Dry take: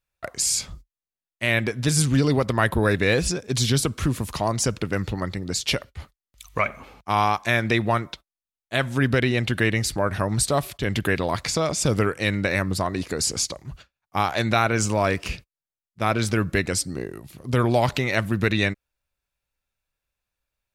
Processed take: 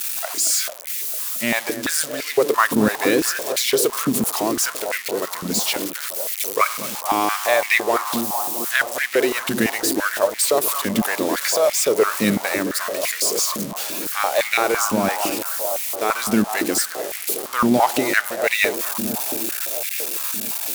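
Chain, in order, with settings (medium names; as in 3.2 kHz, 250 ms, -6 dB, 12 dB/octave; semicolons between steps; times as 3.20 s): zero-crossing glitches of -15.5 dBFS; vibrato 1.2 Hz 5.2 cents; bucket-brigade echo 223 ms, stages 2048, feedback 82%, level -9 dB; step-sequenced high-pass 5.9 Hz 220–2100 Hz; trim -1.5 dB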